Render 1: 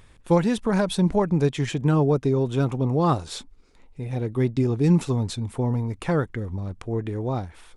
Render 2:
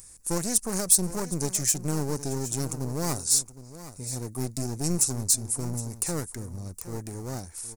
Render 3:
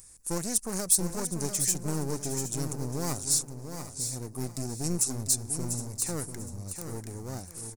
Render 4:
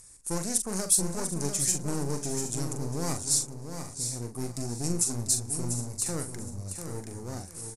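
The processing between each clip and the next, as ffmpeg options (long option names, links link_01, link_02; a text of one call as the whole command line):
ffmpeg -i in.wav -af "aeval=exprs='clip(val(0),-1,0.0282)':channel_layout=same,aecho=1:1:765:0.188,aexciter=amount=13.5:drive=8.5:freq=5200,volume=-7dB" out.wav
ffmpeg -i in.wav -af "aecho=1:1:694|1388|2082:0.398|0.0876|0.0193,volume=-3.5dB" out.wav
ffmpeg -i in.wav -filter_complex "[0:a]lowpass=frequency=12000:width=0.5412,lowpass=frequency=12000:width=1.3066,asplit=2[link_01][link_02];[link_02]adelay=42,volume=-7.5dB[link_03];[link_01][link_03]amix=inputs=2:normalize=0" out.wav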